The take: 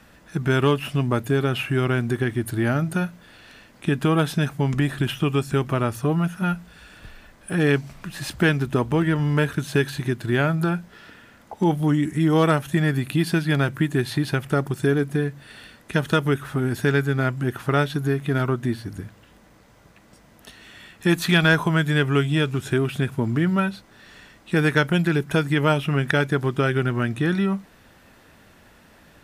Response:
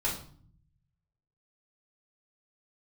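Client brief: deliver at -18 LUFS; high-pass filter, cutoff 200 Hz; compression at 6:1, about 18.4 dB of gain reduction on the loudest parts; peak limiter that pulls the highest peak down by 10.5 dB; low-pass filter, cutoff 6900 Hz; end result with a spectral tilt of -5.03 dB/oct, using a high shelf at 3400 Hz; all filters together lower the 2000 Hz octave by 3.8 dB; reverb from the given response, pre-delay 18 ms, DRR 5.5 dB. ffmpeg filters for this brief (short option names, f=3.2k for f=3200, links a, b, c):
-filter_complex "[0:a]highpass=200,lowpass=6.9k,equalizer=f=2k:t=o:g=-7.5,highshelf=f=3.4k:g=7.5,acompressor=threshold=-37dB:ratio=6,alimiter=level_in=6.5dB:limit=-24dB:level=0:latency=1,volume=-6.5dB,asplit=2[a][b];[1:a]atrim=start_sample=2205,adelay=18[c];[b][c]afir=irnorm=-1:irlink=0,volume=-12.5dB[d];[a][d]amix=inputs=2:normalize=0,volume=23dB"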